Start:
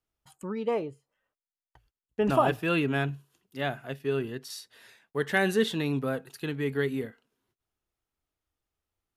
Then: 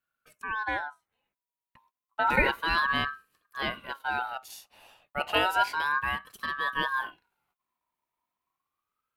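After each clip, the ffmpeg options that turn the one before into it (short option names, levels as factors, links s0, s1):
-af "equalizer=f=125:t=o:w=1:g=-8,equalizer=f=250:t=o:w=1:g=4,equalizer=f=500:t=o:w=1:g=-10,equalizer=f=4000:t=o:w=1:g=-9,equalizer=f=8000:t=o:w=1:g=-7,aeval=exprs='val(0)*sin(2*PI*1200*n/s+1200*0.2/0.31*sin(2*PI*0.31*n/s))':c=same,volume=2"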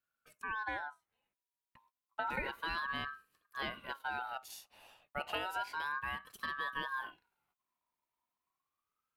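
-af "acompressor=threshold=0.0316:ratio=6,volume=0.596"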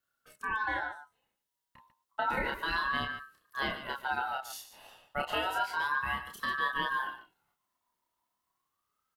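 -af "bandreject=f=2400:w=7.3,aecho=1:1:29.15|145.8:0.708|0.282,volume=1.68"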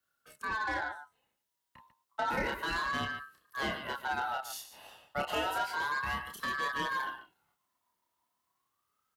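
-filter_complex "[0:a]highpass=42,acrossover=split=190|760|6400[s0][s1][s2][s3];[s2]asoftclip=type=tanh:threshold=0.0237[s4];[s0][s1][s4][s3]amix=inputs=4:normalize=0,volume=1.19"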